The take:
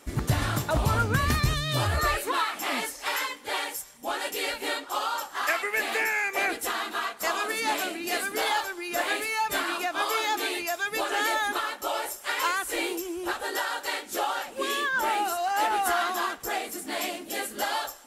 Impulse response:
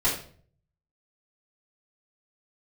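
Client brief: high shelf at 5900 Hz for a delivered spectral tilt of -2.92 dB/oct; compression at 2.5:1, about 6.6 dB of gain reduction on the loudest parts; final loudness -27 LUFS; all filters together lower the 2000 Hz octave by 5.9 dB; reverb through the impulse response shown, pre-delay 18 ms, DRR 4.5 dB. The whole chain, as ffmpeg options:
-filter_complex "[0:a]equalizer=f=2k:t=o:g=-8.5,highshelf=f=5.9k:g=8,acompressor=threshold=-30dB:ratio=2.5,asplit=2[a][b];[1:a]atrim=start_sample=2205,adelay=18[c];[b][c]afir=irnorm=-1:irlink=0,volume=-16.5dB[d];[a][d]amix=inputs=2:normalize=0,volume=3.5dB"

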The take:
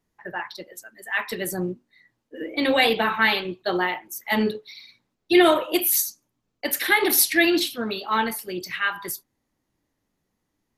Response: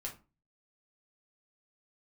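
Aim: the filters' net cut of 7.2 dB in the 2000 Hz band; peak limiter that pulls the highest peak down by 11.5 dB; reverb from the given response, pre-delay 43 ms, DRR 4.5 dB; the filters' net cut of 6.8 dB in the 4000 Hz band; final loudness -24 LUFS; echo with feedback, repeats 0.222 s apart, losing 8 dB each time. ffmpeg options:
-filter_complex "[0:a]equalizer=f=2k:t=o:g=-7.5,equalizer=f=4k:t=o:g=-6,alimiter=limit=-17.5dB:level=0:latency=1,aecho=1:1:222|444|666|888|1110:0.398|0.159|0.0637|0.0255|0.0102,asplit=2[a][b];[1:a]atrim=start_sample=2205,adelay=43[c];[b][c]afir=irnorm=-1:irlink=0,volume=-3.5dB[d];[a][d]amix=inputs=2:normalize=0,volume=3.5dB"

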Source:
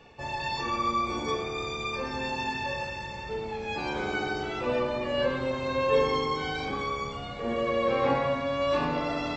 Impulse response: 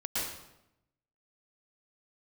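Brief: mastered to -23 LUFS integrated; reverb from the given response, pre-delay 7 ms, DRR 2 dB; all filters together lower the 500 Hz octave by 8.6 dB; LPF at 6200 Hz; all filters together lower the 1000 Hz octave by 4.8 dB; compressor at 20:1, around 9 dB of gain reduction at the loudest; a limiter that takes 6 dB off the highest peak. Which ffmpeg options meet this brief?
-filter_complex "[0:a]lowpass=6.2k,equalizer=f=500:t=o:g=-9,equalizer=f=1k:t=o:g=-3.5,acompressor=threshold=-34dB:ratio=20,alimiter=level_in=7.5dB:limit=-24dB:level=0:latency=1,volume=-7.5dB,asplit=2[a][b];[1:a]atrim=start_sample=2205,adelay=7[c];[b][c]afir=irnorm=-1:irlink=0,volume=-8dB[d];[a][d]amix=inputs=2:normalize=0,volume=15dB"

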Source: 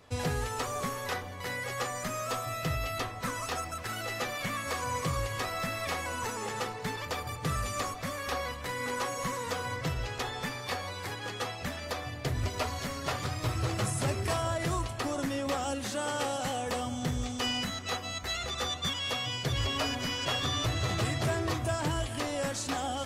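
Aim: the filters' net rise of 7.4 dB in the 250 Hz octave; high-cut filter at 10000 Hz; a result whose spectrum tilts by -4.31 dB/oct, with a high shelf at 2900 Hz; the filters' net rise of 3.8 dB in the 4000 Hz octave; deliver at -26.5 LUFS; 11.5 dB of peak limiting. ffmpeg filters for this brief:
-af "lowpass=10k,equalizer=f=250:t=o:g=9,highshelf=f=2.9k:g=-4,equalizer=f=4k:t=o:g=8,volume=9dB,alimiter=limit=-18.5dB:level=0:latency=1"

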